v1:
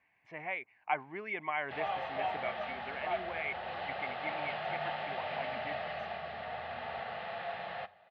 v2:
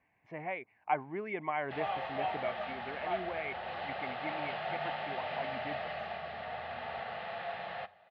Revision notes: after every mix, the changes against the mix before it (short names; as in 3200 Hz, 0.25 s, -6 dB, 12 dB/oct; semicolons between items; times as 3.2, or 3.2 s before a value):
speech: add tilt shelf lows +6.5 dB, about 1100 Hz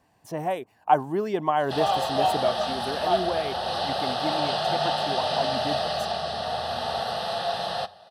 master: remove ladder low-pass 2300 Hz, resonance 85%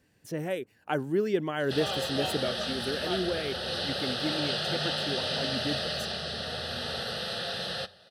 master: add band shelf 860 Hz -15 dB 1 oct